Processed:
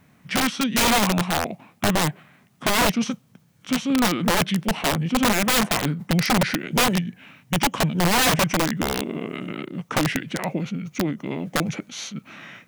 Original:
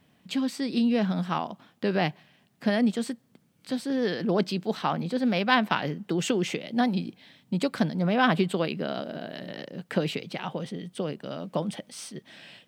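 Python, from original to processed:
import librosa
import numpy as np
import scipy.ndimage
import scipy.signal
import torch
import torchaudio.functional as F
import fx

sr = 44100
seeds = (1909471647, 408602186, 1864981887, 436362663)

y = fx.formant_shift(x, sr, semitones=-6)
y = (np.mod(10.0 ** (21.0 / 20.0) * y + 1.0, 2.0) - 1.0) / 10.0 ** (21.0 / 20.0)
y = F.gain(torch.from_numpy(y), 7.0).numpy()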